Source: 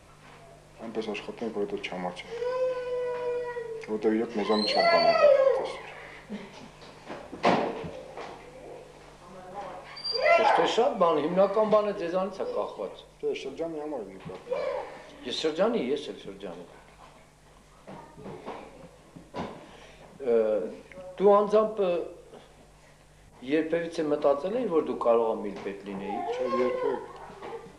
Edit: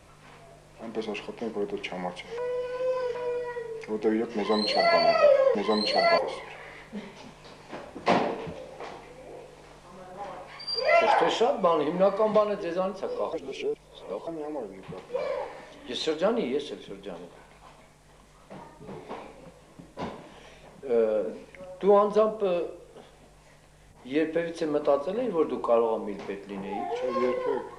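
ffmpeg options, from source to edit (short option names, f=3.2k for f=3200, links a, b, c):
-filter_complex "[0:a]asplit=7[a][b][c][d][e][f][g];[a]atrim=end=2.382[h];[b]atrim=start=2.378:end=3.152,asetpts=PTS-STARTPTS,areverse[i];[c]atrim=start=3.148:end=5.552[j];[d]atrim=start=4.358:end=4.992[k];[e]atrim=start=5.548:end=12.702[l];[f]atrim=start=12.698:end=13.642,asetpts=PTS-STARTPTS,areverse[m];[g]atrim=start=13.638[n];[h][i]acrossfade=d=0.004:c1=hsin:c2=hsin[o];[o][j]acrossfade=d=0.004:c1=hsin:c2=hsin[p];[p][k]acrossfade=d=0.004:c1=hsin:c2=hsin[q];[q][l]acrossfade=d=0.004:c1=hsin:c2=hsin[r];[r][m]acrossfade=d=0.004:c1=hsin:c2=hsin[s];[s][n]acrossfade=d=0.004:c1=hsin:c2=hsin"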